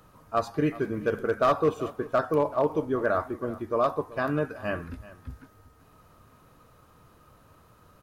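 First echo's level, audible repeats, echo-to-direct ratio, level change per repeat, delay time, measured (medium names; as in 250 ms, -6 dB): -18.0 dB, 1, -18.0 dB, no regular repeats, 381 ms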